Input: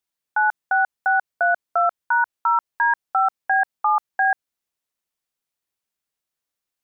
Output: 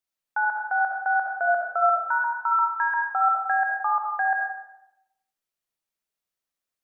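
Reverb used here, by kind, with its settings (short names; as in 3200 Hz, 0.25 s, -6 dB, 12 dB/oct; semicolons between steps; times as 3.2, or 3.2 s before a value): digital reverb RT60 0.89 s, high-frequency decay 0.6×, pre-delay 25 ms, DRR -0.5 dB; gain -5.5 dB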